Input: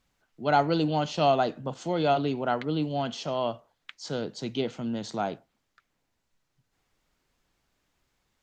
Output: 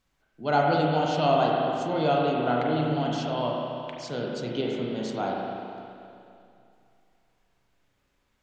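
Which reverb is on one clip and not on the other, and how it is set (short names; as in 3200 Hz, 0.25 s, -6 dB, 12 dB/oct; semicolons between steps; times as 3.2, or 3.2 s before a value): spring tank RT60 2.6 s, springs 32/41 ms, chirp 70 ms, DRR -2.5 dB; gain -2 dB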